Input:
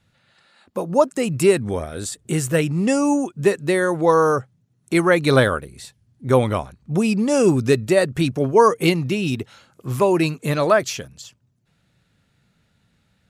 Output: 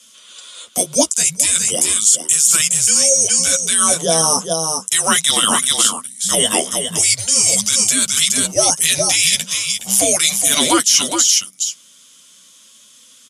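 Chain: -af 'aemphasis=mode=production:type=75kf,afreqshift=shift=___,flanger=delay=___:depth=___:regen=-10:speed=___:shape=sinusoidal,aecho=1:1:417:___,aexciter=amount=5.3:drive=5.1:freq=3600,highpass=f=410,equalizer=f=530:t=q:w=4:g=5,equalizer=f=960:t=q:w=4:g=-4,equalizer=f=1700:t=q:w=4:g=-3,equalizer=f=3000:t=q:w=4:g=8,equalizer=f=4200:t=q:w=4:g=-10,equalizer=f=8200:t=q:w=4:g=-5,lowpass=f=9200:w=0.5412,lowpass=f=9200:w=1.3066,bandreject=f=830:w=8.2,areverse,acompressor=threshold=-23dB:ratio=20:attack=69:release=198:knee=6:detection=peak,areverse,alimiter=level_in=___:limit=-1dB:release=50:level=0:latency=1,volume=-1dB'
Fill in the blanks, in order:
-320, 8.1, 4.3, 0.38, 0.316, 13dB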